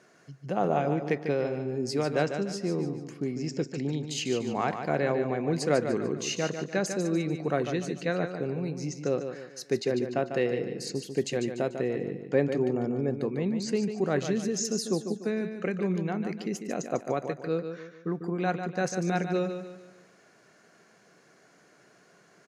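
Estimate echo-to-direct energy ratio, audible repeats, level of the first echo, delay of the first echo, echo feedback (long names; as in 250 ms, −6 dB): −7.0 dB, 4, −8.0 dB, 147 ms, 40%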